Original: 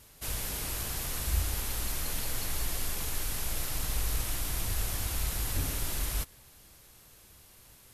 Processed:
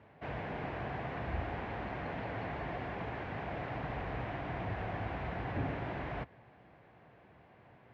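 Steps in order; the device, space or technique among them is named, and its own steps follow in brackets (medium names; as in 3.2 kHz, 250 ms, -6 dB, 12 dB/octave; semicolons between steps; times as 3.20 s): bass cabinet (cabinet simulation 82–2000 Hz, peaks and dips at 83 Hz -9 dB, 710 Hz +7 dB, 1.3 kHz -6 dB); trim +3.5 dB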